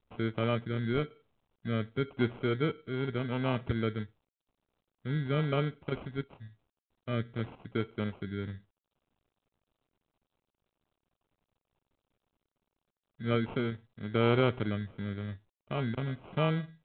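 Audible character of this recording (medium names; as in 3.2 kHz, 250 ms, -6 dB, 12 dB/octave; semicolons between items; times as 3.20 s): phasing stages 6, 0.92 Hz, lowest notch 690–2600 Hz; aliases and images of a low sample rate 1.8 kHz, jitter 0%; µ-law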